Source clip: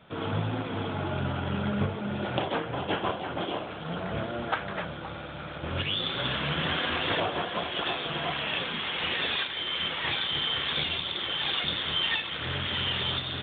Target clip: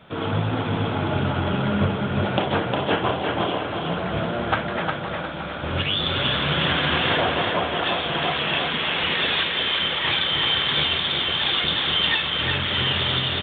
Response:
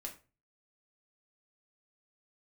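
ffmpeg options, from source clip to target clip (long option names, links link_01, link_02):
-filter_complex "[0:a]asettb=1/sr,asplit=3[link_01][link_02][link_03];[link_01]atrim=end=7.164[link_04];[link_02]atrim=start=7.16:end=7.83,asetpts=PTS-STARTPTS,afade=type=in:duration=0.004:curve=qsin,afade=type=out:start_time=0.666:duration=0.004:curve=qsin,acrossover=split=2800[link_05][link_06];[link_06]acompressor=threshold=-48dB:ratio=4:attack=1:release=60[link_07];[link_05][link_07]amix=inputs=2:normalize=0[link_08];[link_03]atrim=start=7.826[link_09];[link_04][link_08]acrossfade=duration=0.004:curve1=hsin:curve2=qsin[link_10];[link_10][link_09]acrossfade=duration=0.004:curve1=qsin:curve2=hsin,aecho=1:1:357|714|1071|1428|1785:0.631|0.246|0.096|0.0374|0.0146,volume=6dB"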